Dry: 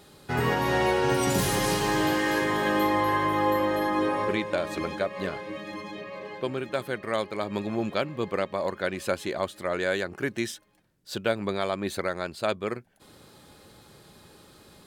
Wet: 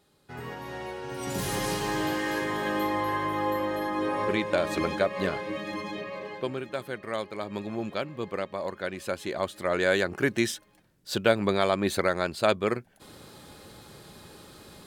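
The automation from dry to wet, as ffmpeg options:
-af "volume=11dB,afade=t=in:st=1.11:d=0.43:silence=0.334965,afade=t=in:st=3.98:d=0.71:silence=0.446684,afade=t=out:st=5.95:d=0.74:silence=0.446684,afade=t=in:st=9.11:d=0.94:silence=0.398107"

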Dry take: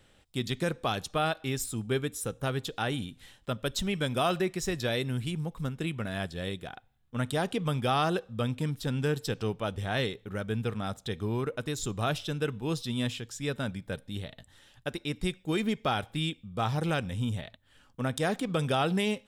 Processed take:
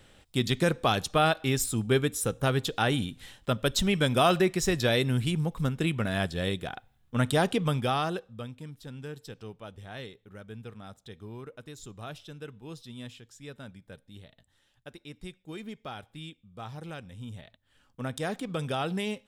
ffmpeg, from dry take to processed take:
-af "volume=13dB,afade=t=out:st=7.43:d=0.57:silence=0.446684,afade=t=out:st=8:d=0.52:silence=0.334965,afade=t=in:st=17.16:d=0.88:silence=0.398107"

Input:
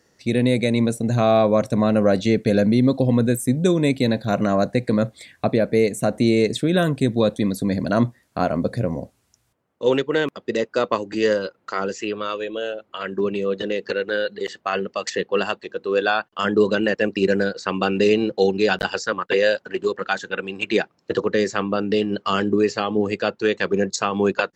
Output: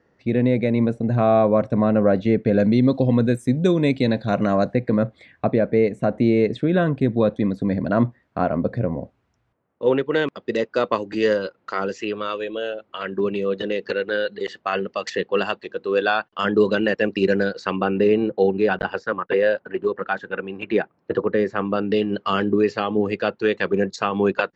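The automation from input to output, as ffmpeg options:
-af "asetnsamples=n=441:p=0,asendcmd='2.6 lowpass f 4100;4.73 lowpass f 2100;10.06 lowpass f 4500;17.76 lowpass f 1800;21.65 lowpass f 3400',lowpass=1.9k"

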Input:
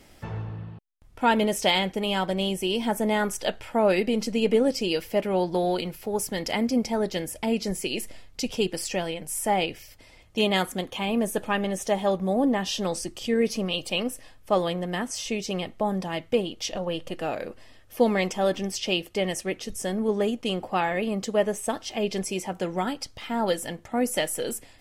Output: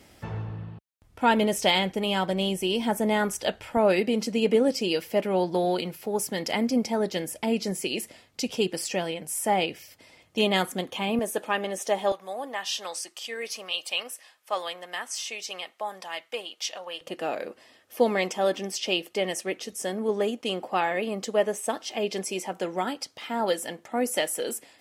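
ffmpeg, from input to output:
-af "asetnsamples=n=441:p=0,asendcmd='3.77 highpass f 140;11.19 highpass f 330;12.12 highpass f 900;17.01 highpass f 260',highpass=51"

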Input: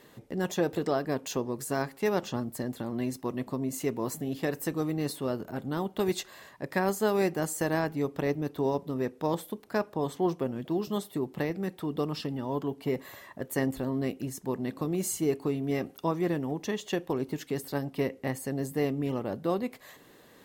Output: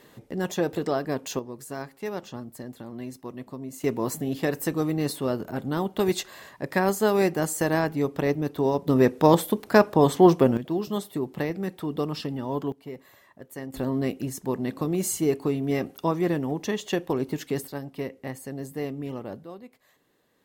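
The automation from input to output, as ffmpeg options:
-af "asetnsamples=n=441:p=0,asendcmd='1.39 volume volume -5dB;3.84 volume volume 4.5dB;8.88 volume volume 12dB;10.57 volume volume 2.5dB;12.72 volume volume -8.5dB;13.74 volume volume 4dB;17.67 volume volume -3dB;19.44 volume volume -13dB',volume=2dB"

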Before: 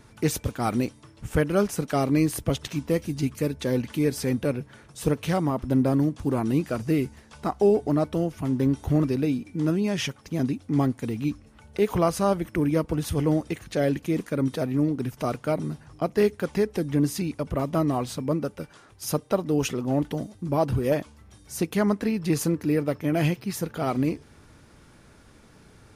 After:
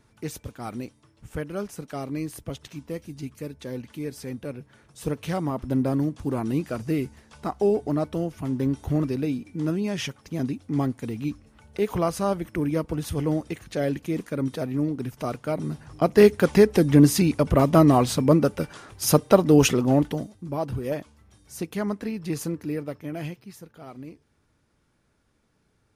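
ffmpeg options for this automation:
-af "volume=8dB,afade=t=in:st=4.45:d=1.13:silence=0.446684,afade=t=in:st=15.52:d=0.89:silence=0.316228,afade=t=out:st=19.66:d=0.7:silence=0.223872,afade=t=out:st=22.55:d=1.13:silence=0.281838"

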